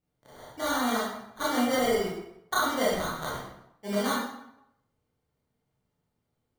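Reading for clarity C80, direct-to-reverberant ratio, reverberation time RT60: 3.5 dB, -7.5 dB, 0.80 s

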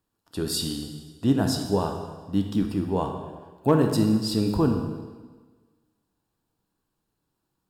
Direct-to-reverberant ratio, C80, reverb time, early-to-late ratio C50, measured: 4.0 dB, 7.5 dB, 1.4 s, 5.5 dB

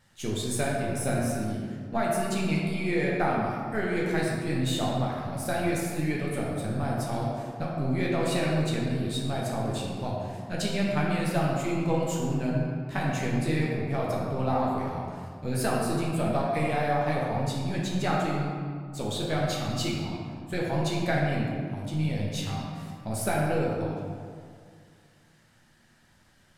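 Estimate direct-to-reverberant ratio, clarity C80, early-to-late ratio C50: -4.5 dB, 1.0 dB, -0.5 dB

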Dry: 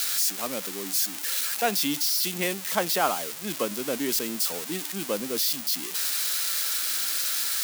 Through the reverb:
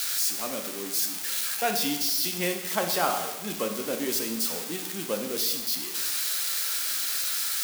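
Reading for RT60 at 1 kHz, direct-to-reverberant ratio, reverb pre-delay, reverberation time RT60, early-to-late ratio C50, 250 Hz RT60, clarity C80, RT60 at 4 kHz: 1.1 s, 4.0 dB, 6 ms, 1.1 s, 7.0 dB, 1.1 s, 9.0 dB, 1.0 s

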